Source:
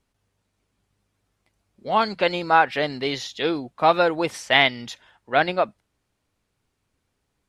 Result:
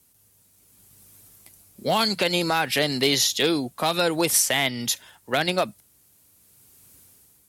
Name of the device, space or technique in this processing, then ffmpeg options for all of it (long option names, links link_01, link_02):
FM broadcast chain: -filter_complex "[0:a]highpass=55,equalizer=frequency=140:width=0.34:gain=5,dynaudnorm=framelen=580:gausssize=3:maxgain=10dB,acrossover=split=260|2300[link_01][link_02][link_03];[link_01]acompressor=threshold=-31dB:ratio=4[link_04];[link_02]acompressor=threshold=-22dB:ratio=4[link_05];[link_03]acompressor=threshold=-29dB:ratio=4[link_06];[link_04][link_05][link_06]amix=inputs=3:normalize=0,aemphasis=mode=production:type=50fm,alimiter=limit=-13dB:level=0:latency=1:release=73,asoftclip=type=hard:threshold=-15dB,lowpass=frequency=15000:width=0.5412,lowpass=frequency=15000:width=1.3066,aemphasis=mode=production:type=50fm,volume=2dB"